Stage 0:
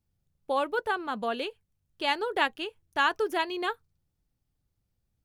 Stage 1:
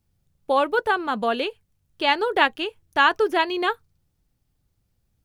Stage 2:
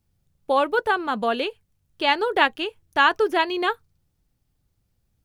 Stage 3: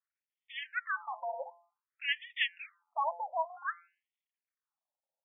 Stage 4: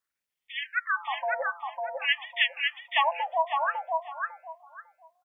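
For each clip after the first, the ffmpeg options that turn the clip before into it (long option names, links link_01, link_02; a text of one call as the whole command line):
ffmpeg -i in.wav -filter_complex "[0:a]acrossover=split=5100[link_01][link_02];[link_02]acompressor=threshold=-55dB:ratio=4:attack=1:release=60[link_03];[link_01][link_03]amix=inputs=2:normalize=0,volume=7.5dB" out.wav
ffmpeg -i in.wav -af anull out.wav
ffmpeg -i in.wav -af "bandreject=frequency=172:width_type=h:width=4,bandreject=frequency=344:width_type=h:width=4,bandreject=frequency=516:width_type=h:width=4,bandreject=frequency=688:width_type=h:width=4,bandreject=frequency=860:width_type=h:width=4,bandreject=frequency=1032:width_type=h:width=4,bandreject=frequency=1204:width_type=h:width=4,bandreject=frequency=1376:width_type=h:width=4,bandreject=frequency=1548:width_type=h:width=4,aeval=exprs='max(val(0),0)':channel_layout=same,afftfilt=real='re*between(b*sr/1024,690*pow(2600/690,0.5+0.5*sin(2*PI*0.54*pts/sr))/1.41,690*pow(2600/690,0.5+0.5*sin(2*PI*0.54*pts/sr))*1.41)':imag='im*between(b*sr/1024,690*pow(2600/690,0.5+0.5*sin(2*PI*0.54*pts/sr))/1.41,690*pow(2600/690,0.5+0.5*sin(2*PI*0.54*pts/sr))*1.41)':win_size=1024:overlap=0.75,volume=-4.5dB" out.wav
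ffmpeg -i in.wav -af "aecho=1:1:551|1102|1653:0.708|0.149|0.0312,volume=7dB" out.wav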